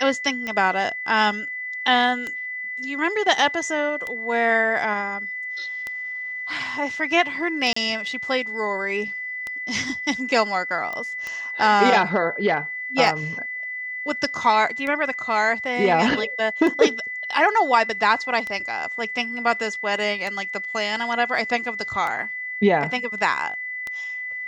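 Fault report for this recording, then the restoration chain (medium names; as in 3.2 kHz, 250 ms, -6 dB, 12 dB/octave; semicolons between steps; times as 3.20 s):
tick 33 1/3 rpm -15 dBFS
whine 2 kHz -28 dBFS
7.73–7.76 s: dropout 34 ms
10.93 s: pop -18 dBFS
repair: de-click; band-stop 2 kHz, Q 30; interpolate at 7.73 s, 34 ms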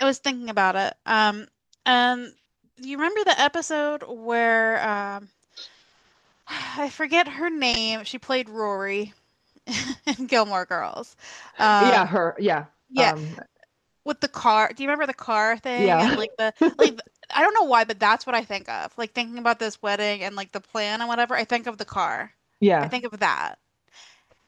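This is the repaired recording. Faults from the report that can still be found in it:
nothing left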